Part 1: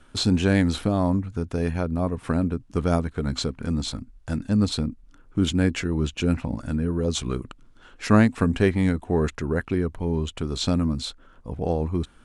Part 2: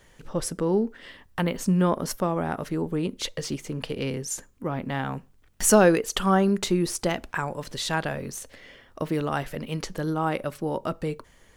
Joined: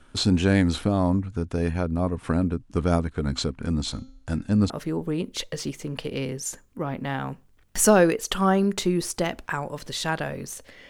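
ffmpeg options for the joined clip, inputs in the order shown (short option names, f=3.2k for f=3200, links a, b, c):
-filter_complex "[0:a]asplit=3[a][b][c];[a]afade=t=out:st=3.88:d=0.02[d];[b]bandreject=f=265.7:t=h:w=4,bandreject=f=531.4:t=h:w=4,bandreject=f=797.1:t=h:w=4,bandreject=f=1.0628k:t=h:w=4,bandreject=f=1.3285k:t=h:w=4,bandreject=f=1.5942k:t=h:w=4,bandreject=f=1.8599k:t=h:w=4,bandreject=f=2.1256k:t=h:w=4,bandreject=f=2.3913k:t=h:w=4,bandreject=f=2.657k:t=h:w=4,bandreject=f=2.9227k:t=h:w=4,bandreject=f=3.1884k:t=h:w=4,bandreject=f=3.4541k:t=h:w=4,bandreject=f=3.7198k:t=h:w=4,bandreject=f=3.9855k:t=h:w=4,bandreject=f=4.2512k:t=h:w=4,bandreject=f=4.5169k:t=h:w=4,bandreject=f=4.7826k:t=h:w=4,bandreject=f=5.0483k:t=h:w=4,bandreject=f=5.314k:t=h:w=4,bandreject=f=5.5797k:t=h:w=4,bandreject=f=5.8454k:t=h:w=4,bandreject=f=6.1111k:t=h:w=4,bandreject=f=6.3768k:t=h:w=4,bandreject=f=6.6425k:t=h:w=4,bandreject=f=6.9082k:t=h:w=4,afade=t=in:st=3.88:d=0.02,afade=t=out:st=4.7:d=0.02[e];[c]afade=t=in:st=4.7:d=0.02[f];[d][e][f]amix=inputs=3:normalize=0,apad=whole_dur=10.89,atrim=end=10.89,atrim=end=4.702[g];[1:a]atrim=start=2.548:end=8.74[h];[g][h]acrossfade=d=0.004:c1=hsin:c2=hsin"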